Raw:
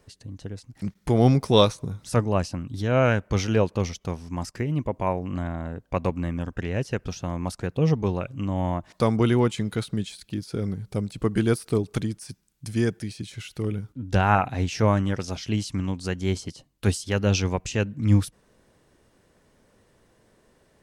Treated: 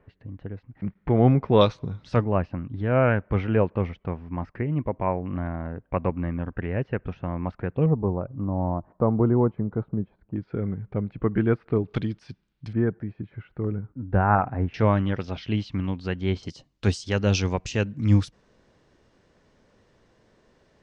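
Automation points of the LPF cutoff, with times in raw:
LPF 24 dB/oct
2300 Hz
from 1.61 s 4000 Hz
from 2.24 s 2300 Hz
from 7.86 s 1100 Hz
from 10.36 s 2100 Hz
from 11.88 s 3800 Hz
from 12.73 s 1600 Hz
from 14.74 s 3700 Hz
from 16.43 s 6300 Hz

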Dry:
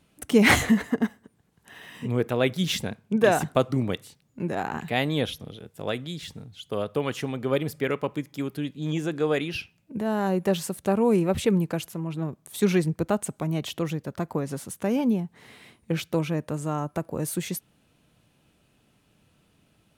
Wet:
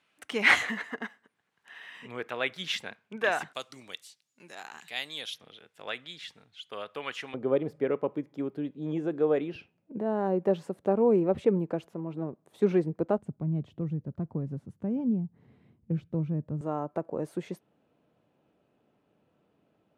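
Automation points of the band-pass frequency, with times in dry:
band-pass, Q 0.89
1900 Hz
from 3.53 s 5400 Hz
from 5.34 s 2100 Hz
from 7.34 s 460 Hz
from 13.18 s 120 Hz
from 16.61 s 520 Hz

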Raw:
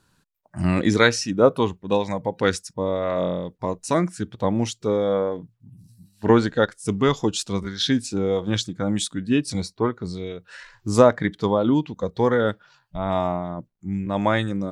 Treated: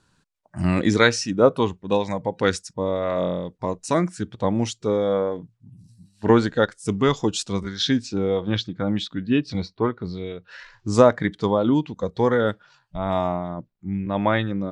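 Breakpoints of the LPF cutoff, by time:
LPF 24 dB/oct
7.61 s 9400 Hz
8.41 s 4400 Hz
10.3 s 4400 Hz
11.13 s 9600 Hz
13.03 s 9600 Hz
13.98 s 4100 Hz

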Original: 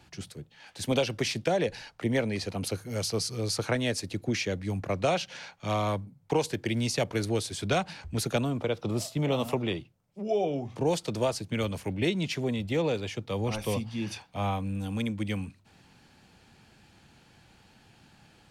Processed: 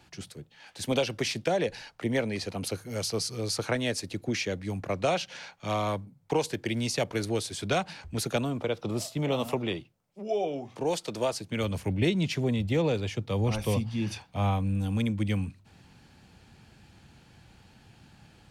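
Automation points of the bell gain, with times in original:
bell 67 Hz 2.9 oct
9.74 s -3 dB
10.28 s -12 dB
11.06 s -12 dB
11.53 s -4 dB
11.78 s +6.5 dB

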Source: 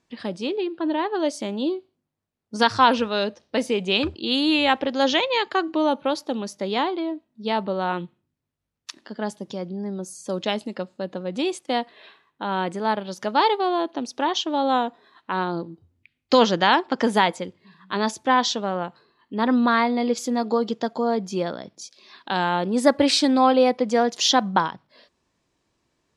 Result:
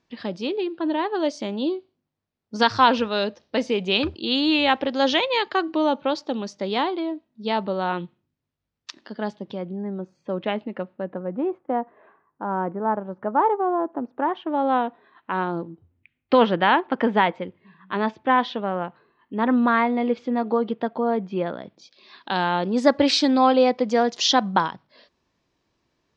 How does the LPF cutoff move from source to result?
LPF 24 dB/oct
9.01 s 5900 Hz
9.85 s 2600 Hz
10.9 s 2600 Hz
11.41 s 1400 Hz
14.01 s 1400 Hz
14.87 s 2900 Hz
21.49 s 2900 Hz
22.34 s 6100 Hz

